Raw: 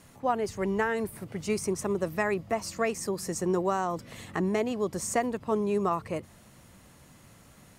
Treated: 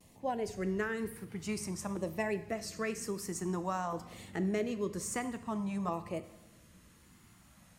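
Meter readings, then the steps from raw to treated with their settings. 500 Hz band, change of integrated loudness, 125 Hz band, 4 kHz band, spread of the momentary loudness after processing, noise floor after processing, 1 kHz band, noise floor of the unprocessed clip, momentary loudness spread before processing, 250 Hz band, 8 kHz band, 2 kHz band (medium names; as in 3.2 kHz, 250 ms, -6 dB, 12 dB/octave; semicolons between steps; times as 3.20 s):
-8.0 dB, -6.5 dB, -4.0 dB, -5.0 dB, 7 LU, -61 dBFS, -8.0 dB, -56 dBFS, 6 LU, -5.0 dB, -5.0 dB, -6.5 dB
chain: LFO notch saw down 0.51 Hz 360–1500 Hz; two-slope reverb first 0.77 s, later 2.3 s, from -17 dB, DRR 10 dB; vibrato 1 Hz 56 cents; trim -5.5 dB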